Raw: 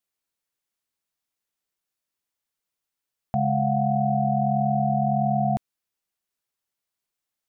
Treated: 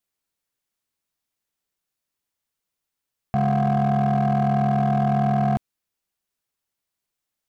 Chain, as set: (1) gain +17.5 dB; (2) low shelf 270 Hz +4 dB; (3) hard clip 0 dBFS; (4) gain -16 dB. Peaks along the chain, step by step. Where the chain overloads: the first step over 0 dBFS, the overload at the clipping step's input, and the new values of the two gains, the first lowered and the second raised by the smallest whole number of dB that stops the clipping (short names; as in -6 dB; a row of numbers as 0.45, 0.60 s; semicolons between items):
+4.0, +6.0, 0.0, -16.0 dBFS; step 1, 6.0 dB; step 1 +11.5 dB, step 4 -10 dB